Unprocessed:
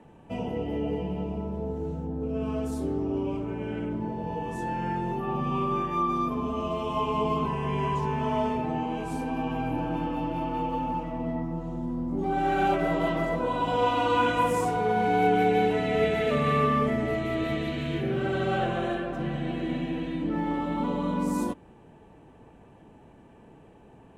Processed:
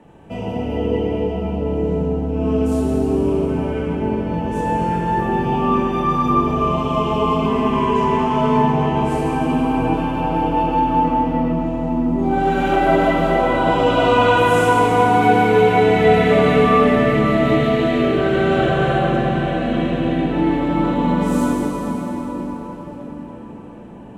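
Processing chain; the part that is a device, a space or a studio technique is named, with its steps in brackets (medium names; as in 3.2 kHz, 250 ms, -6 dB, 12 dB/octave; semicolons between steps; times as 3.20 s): cathedral (reverberation RT60 6.1 s, pre-delay 12 ms, DRR -4.5 dB); trim +4.5 dB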